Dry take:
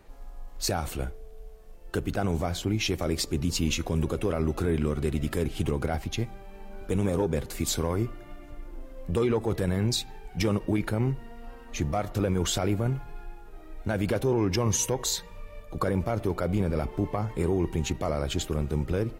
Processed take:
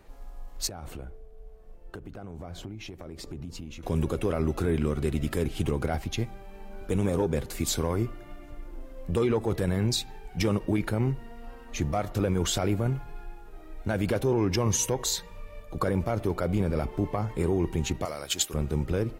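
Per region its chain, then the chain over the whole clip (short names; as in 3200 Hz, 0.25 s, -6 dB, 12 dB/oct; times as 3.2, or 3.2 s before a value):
0.67–3.83 high shelf 2200 Hz -11 dB + compressor, threshold -34 dBFS + tremolo triangle 1.2 Hz, depth 35%
18.05–18.54 tilt +3.5 dB/oct + upward expander, over -36 dBFS
whole clip: dry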